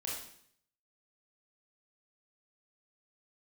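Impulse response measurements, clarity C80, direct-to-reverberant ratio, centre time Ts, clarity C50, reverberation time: 5.5 dB, -4.5 dB, 52 ms, 1.5 dB, 0.65 s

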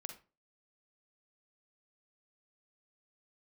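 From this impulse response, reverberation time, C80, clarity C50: 0.35 s, 15.5 dB, 8.5 dB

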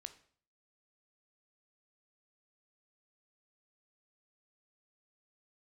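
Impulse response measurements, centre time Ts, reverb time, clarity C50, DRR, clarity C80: 6 ms, 0.50 s, 14.0 dB, 10.0 dB, 17.5 dB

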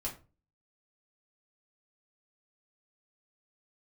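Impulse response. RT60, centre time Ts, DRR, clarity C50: 0.35 s, 18 ms, -3.5 dB, 11.0 dB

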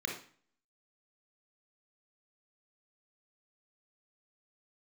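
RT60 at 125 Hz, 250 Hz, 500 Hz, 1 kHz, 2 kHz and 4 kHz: 0.50 s, 0.55 s, 0.45 s, 0.45 s, 0.45 s, 0.40 s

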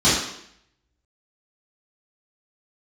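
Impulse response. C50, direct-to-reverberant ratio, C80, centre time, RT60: 1.0 dB, -11.5 dB, 5.0 dB, 59 ms, 0.70 s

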